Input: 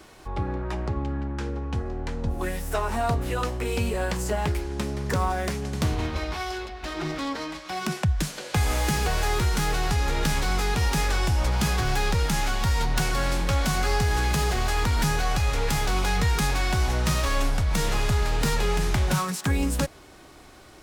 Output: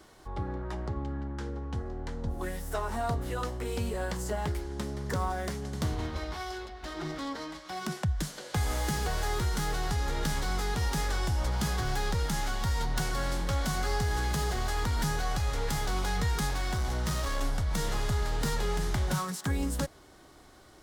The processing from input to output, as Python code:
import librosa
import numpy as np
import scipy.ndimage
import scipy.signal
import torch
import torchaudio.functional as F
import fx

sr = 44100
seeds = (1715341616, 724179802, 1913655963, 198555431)

y = fx.overload_stage(x, sr, gain_db=20.0, at=(16.49, 17.41))
y = fx.peak_eq(y, sr, hz=2500.0, db=-8.0, octaves=0.28)
y = y * librosa.db_to_amplitude(-6.0)